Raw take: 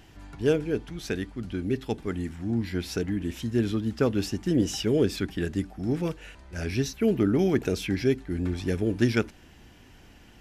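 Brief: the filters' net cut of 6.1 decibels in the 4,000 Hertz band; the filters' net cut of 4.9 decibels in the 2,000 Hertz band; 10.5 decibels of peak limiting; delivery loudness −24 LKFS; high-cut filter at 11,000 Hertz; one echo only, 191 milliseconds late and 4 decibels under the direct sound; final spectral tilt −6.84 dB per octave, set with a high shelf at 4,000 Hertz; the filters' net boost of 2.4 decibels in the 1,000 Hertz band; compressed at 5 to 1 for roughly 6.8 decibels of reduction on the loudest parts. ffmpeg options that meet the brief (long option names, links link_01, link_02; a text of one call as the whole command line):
ffmpeg -i in.wav -af "lowpass=11000,equalizer=frequency=1000:width_type=o:gain=6.5,equalizer=frequency=2000:width_type=o:gain=-8,highshelf=frequency=4000:gain=-3,equalizer=frequency=4000:width_type=o:gain=-4,acompressor=threshold=-25dB:ratio=5,alimiter=level_in=2.5dB:limit=-24dB:level=0:latency=1,volume=-2.5dB,aecho=1:1:191:0.631,volume=11dB" out.wav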